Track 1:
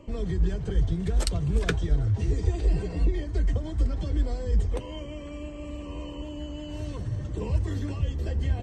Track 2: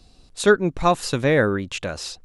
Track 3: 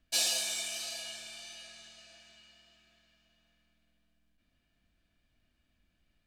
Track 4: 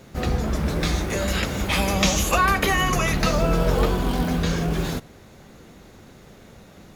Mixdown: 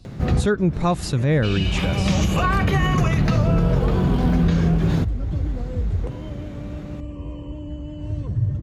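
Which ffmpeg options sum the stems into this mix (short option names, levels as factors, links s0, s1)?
-filter_complex "[0:a]highshelf=f=2400:g=-10,alimiter=limit=0.0794:level=0:latency=1,adelay=1300,volume=0.944[s0];[1:a]equalizer=f=64:t=o:w=2.7:g=4,volume=0.75,asplit=2[s1][s2];[2:a]lowpass=f=2700:t=q:w=4.9,adelay=1300,volume=0.794[s3];[3:a]highshelf=f=8900:g=-5.5,acompressor=mode=upward:threshold=0.0178:ratio=2.5,aemphasis=mode=reproduction:type=cd,adelay=50,volume=1[s4];[s2]apad=whole_len=308830[s5];[s4][s5]sidechaincompress=threshold=0.0251:ratio=12:attack=23:release=390[s6];[s0][s1][s3][s6]amix=inputs=4:normalize=0,equalizer=f=120:w=0.77:g=11.5,alimiter=limit=0.316:level=0:latency=1:release=89"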